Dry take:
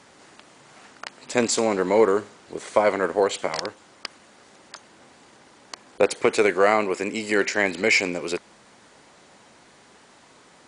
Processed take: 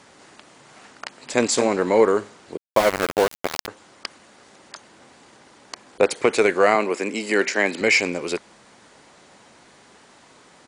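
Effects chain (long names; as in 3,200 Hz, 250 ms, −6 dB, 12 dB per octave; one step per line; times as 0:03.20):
0:01.06–0:01.47: delay throw 220 ms, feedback 15%, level −9 dB
0:02.57–0:03.68: centre clipping without the shift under −20 dBFS
0:06.75–0:07.81: high-pass filter 170 Hz 24 dB per octave
level +1.5 dB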